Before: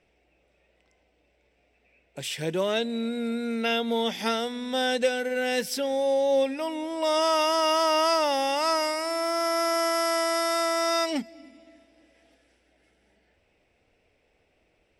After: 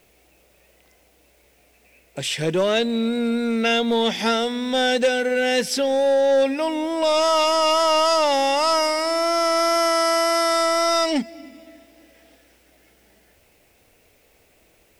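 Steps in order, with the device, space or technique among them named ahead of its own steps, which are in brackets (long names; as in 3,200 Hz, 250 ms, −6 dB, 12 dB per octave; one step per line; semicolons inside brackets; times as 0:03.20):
compact cassette (soft clipping −20 dBFS, distortion −15 dB; low-pass filter 9,900 Hz 12 dB per octave; tape wow and flutter 12 cents; white noise bed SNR 41 dB)
level +8 dB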